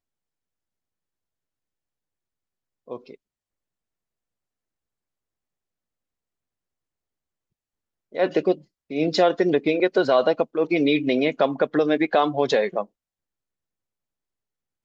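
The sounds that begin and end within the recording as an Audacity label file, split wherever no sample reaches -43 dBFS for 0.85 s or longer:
2.880000	3.150000	sound
8.130000	12.850000	sound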